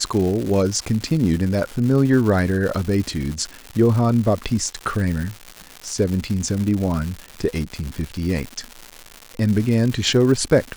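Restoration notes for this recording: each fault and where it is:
surface crackle 260 per second −25 dBFS

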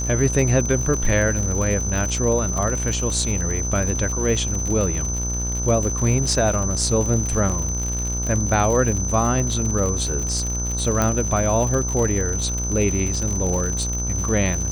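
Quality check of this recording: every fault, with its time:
mains buzz 60 Hz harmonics 26 −26 dBFS
surface crackle 94 per second −25 dBFS
whistle 6,100 Hz −26 dBFS
0:07.49–0:07.50: drop-out 6.2 ms
0:11.02: click −6 dBFS

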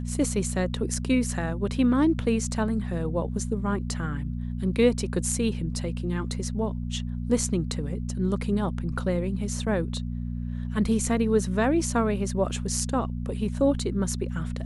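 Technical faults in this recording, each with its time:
mains hum 60 Hz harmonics 4 −31 dBFS

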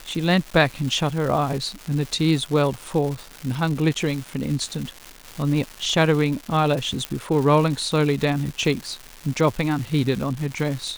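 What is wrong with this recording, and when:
surface crackle 400 per second −28 dBFS
0:07.05: click −10 dBFS

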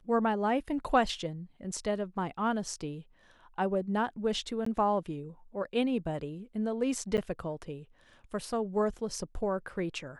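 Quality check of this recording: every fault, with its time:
0:04.65–0:04.66: drop-out 14 ms
0:07.17–0:07.18: drop-out 9.1 ms

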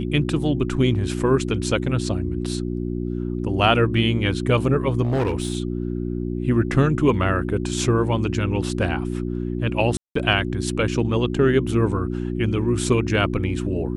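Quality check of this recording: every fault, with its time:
mains hum 60 Hz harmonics 6 −26 dBFS
0:05.02–0:05.57: clipping −17.5 dBFS
0:09.97–0:10.15: drop-out 184 ms

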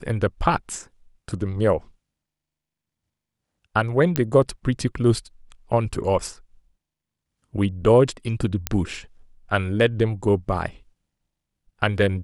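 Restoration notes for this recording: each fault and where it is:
0:04.16: click −6 dBFS
0:08.67: click −5 dBFS

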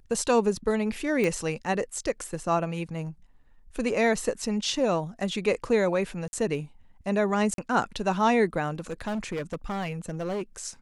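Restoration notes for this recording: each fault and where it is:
0:01.24: click −15 dBFS
0:06.28–0:06.33: drop-out 50 ms
0:07.54–0:07.58: drop-out 42 ms
0:08.74–0:10.42: clipping −27 dBFS

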